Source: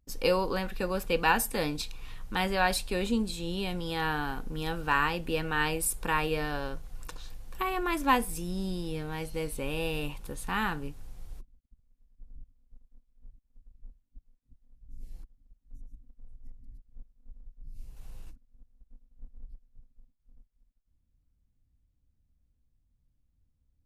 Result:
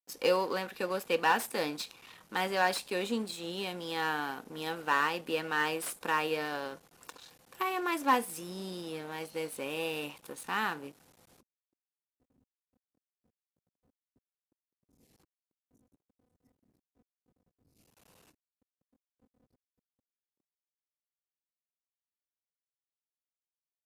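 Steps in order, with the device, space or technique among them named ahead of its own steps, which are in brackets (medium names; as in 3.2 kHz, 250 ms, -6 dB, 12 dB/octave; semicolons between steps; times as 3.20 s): early transistor amplifier (crossover distortion -46.5 dBFS; slew-rate limiter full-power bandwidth 130 Hz); high-pass 280 Hz 12 dB/octave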